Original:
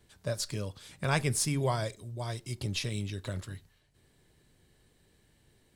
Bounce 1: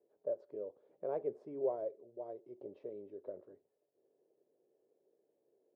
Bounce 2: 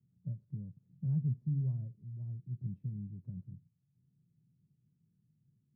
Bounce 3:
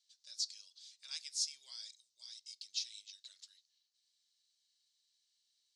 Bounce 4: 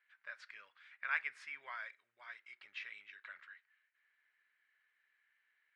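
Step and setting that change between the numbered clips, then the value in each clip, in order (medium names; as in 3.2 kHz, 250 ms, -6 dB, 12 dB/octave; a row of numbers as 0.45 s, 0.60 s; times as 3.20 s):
Butterworth band-pass, frequency: 480 Hz, 150 Hz, 5.1 kHz, 1.8 kHz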